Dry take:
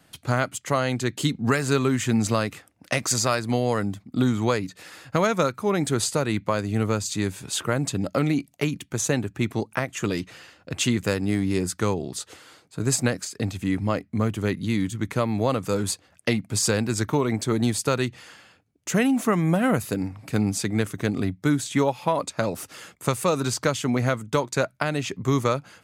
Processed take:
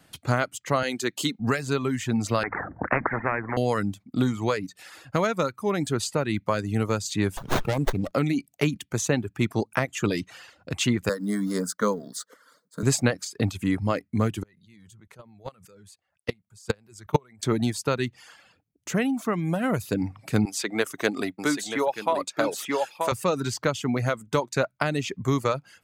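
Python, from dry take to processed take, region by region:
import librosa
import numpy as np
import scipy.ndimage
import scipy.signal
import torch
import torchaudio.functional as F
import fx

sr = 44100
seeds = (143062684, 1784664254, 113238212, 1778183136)

y = fx.chain(x, sr, fx.highpass(hz=250.0, slope=12),
    fx.high_shelf(hz=5900.0, db=7.0), at=(0.83, 1.4))
y = fx.chain(y, sr, fx.steep_lowpass(hz=1800.0, slope=72),
    fx.hum_notches(base_hz=50, count=5),
    fx.spectral_comp(ratio=4.0), at=(2.43, 3.57))
y = fx.chain(y, sr, fx.high_shelf(hz=4800.0, db=11.0),
    fx.running_max(window=17), at=(7.37, 8.12))
y = fx.chain(y, sr, fx.law_mismatch(coded='A'),
    fx.highpass(hz=170.0, slope=12),
    fx.fixed_phaser(hz=520.0, stages=8), at=(11.09, 12.83))
y = fx.chain(y, sr, fx.peak_eq(hz=280.0, db=-12.5, octaves=0.25),
    fx.level_steps(step_db=21),
    fx.upward_expand(threshold_db=-49.0, expansion=1.5), at=(14.43, 17.43))
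y = fx.chain(y, sr, fx.highpass(hz=390.0, slope=12),
    fx.echo_single(ms=932, db=-5.0), at=(20.45, 23.12))
y = fx.dereverb_blind(y, sr, rt60_s=0.57)
y = fx.dynamic_eq(y, sr, hz=9800.0, q=0.94, threshold_db=-44.0, ratio=4.0, max_db=-6)
y = fx.rider(y, sr, range_db=10, speed_s=0.5)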